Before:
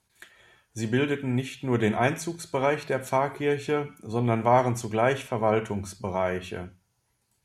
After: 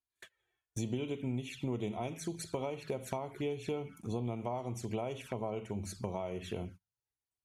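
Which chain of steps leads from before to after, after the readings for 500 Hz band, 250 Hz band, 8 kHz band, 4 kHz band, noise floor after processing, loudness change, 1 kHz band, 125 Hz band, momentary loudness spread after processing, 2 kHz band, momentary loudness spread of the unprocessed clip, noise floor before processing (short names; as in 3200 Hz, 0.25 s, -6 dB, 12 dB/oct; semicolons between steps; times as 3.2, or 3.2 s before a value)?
-12.5 dB, -10.0 dB, -7.5 dB, -9.5 dB, under -85 dBFS, -12.5 dB, -16.0 dB, -10.0 dB, 5 LU, -18.5 dB, 11 LU, -74 dBFS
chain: gate -47 dBFS, range -24 dB; compressor 10:1, threshold -33 dBFS, peak gain reduction 18 dB; envelope flanger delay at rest 2.9 ms, full sweep at -35 dBFS; gain +1 dB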